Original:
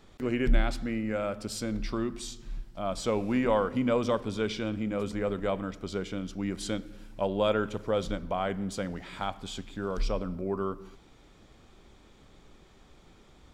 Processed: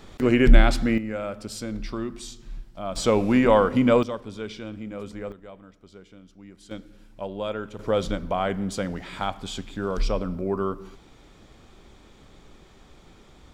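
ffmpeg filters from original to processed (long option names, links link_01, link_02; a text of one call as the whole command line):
ffmpeg -i in.wav -af "asetnsamples=nb_out_samples=441:pad=0,asendcmd='0.98 volume volume 0.5dB;2.96 volume volume 8dB;4.03 volume volume -4dB;5.32 volume volume -14dB;6.71 volume volume -4dB;7.79 volume volume 5dB',volume=10dB" out.wav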